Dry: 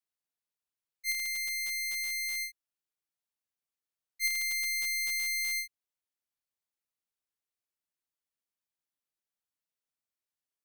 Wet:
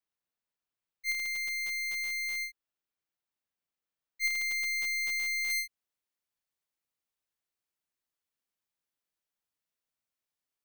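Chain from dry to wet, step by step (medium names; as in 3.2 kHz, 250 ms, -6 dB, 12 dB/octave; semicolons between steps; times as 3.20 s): peaking EQ 11 kHz -10 dB 1.8 oct, from 5.50 s -2.5 dB; trim +2.5 dB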